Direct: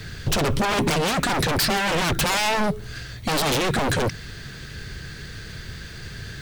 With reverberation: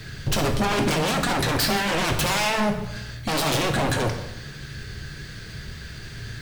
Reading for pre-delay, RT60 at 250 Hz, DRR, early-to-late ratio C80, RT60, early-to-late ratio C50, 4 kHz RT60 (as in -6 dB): 3 ms, 1.0 s, 3.5 dB, 10.5 dB, 0.95 s, 7.5 dB, 0.75 s